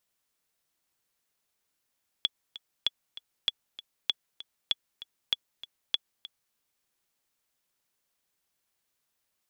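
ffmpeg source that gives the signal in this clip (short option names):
-f lavfi -i "aevalsrc='pow(10,(-11.5-16.5*gte(mod(t,2*60/195),60/195))/20)*sin(2*PI*3390*mod(t,60/195))*exp(-6.91*mod(t,60/195)/0.03)':d=4.3:s=44100"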